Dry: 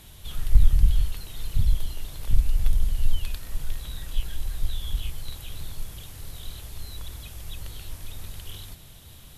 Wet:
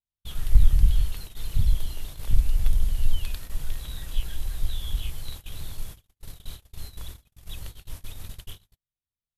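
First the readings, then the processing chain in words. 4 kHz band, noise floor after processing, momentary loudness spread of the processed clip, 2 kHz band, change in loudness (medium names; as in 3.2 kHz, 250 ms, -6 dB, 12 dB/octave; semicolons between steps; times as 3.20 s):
-1.0 dB, under -85 dBFS, 20 LU, -1.0 dB, +1.5 dB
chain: gate -34 dBFS, range -51 dB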